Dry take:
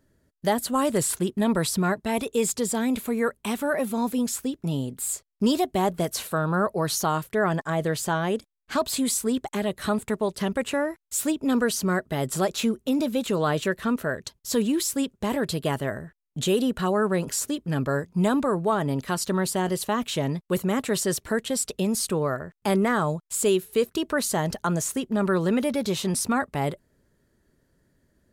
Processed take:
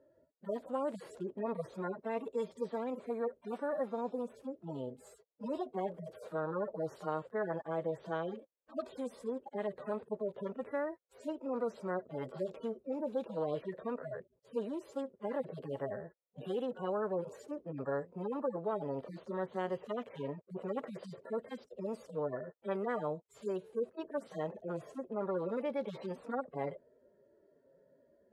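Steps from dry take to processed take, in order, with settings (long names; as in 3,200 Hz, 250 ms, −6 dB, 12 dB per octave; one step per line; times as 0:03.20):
harmonic-percussive split with one part muted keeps harmonic
resonant band-pass 520 Hz, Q 4.5
every bin compressed towards the loudest bin 2 to 1
level −3 dB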